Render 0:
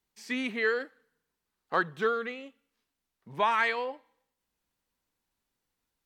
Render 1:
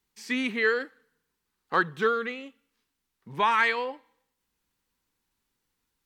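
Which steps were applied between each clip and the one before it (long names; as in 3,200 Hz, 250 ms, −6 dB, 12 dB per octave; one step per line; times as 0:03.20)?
parametric band 640 Hz −8 dB 0.43 octaves
level +4 dB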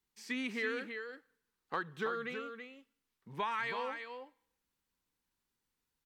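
downward compressor, threshold −25 dBFS, peak gain reduction 7.5 dB
on a send: single-tap delay 328 ms −7 dB
on the sum: level −7.5 dB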